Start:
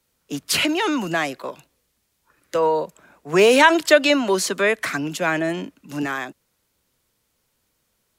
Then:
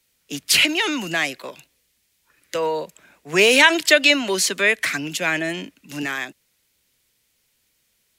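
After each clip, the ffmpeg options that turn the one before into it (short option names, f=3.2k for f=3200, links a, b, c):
-af "highshelf=f=1.6k:t=q:w=1.5:g=7,volume=-3dB"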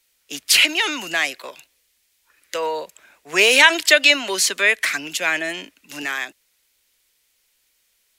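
-af "equalizer=f=140:t=o:w=2.4:g=-14.5,volume=2dB"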